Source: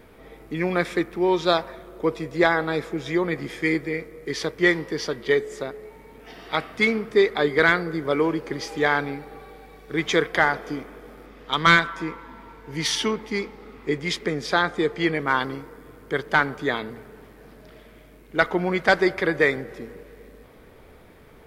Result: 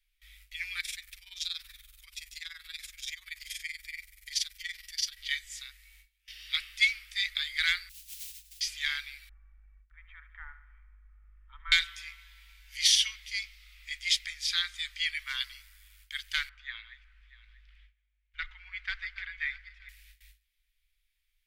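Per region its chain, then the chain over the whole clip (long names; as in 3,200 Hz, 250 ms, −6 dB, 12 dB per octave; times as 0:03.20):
0:00.80–0:05.17: high-shelf EQ 4,800 Hz +9 dB + downward compressor, threshold −24 dBFS + amplitude modulation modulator 21 Hz, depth 70%
0:07.89–0:08.61: Chebyshev low-pass with heavy ripple 730 Hz, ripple 6 dB + noise that follows the level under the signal 21 dB
0:09.29–0:11.72: inverse Chebyshev low-pass filter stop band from 5,000 Hz, stop band 70 dB + comb filter 2.2 ms, depth 35% + repeating echo 72 ms, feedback 59%, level −14 dB
0:16.49–0:19.89: feedback delay that plays each chunk backwards 320 ms, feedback 43%, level −11.5 dB + low-pass filter 1,700 Hz
whole clip: noise gate with hold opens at −36 dBFS; inverse Chebyshev band-stop filter 170–580 Hz, stop band 80 dB; level +3 dB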